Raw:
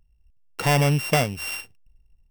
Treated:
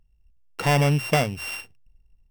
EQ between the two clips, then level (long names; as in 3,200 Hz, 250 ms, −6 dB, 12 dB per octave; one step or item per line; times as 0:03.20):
high-shelf EQ 6,200 Hz −5.5 dB
mains-hum notches 60/120 Hz
0.0 dB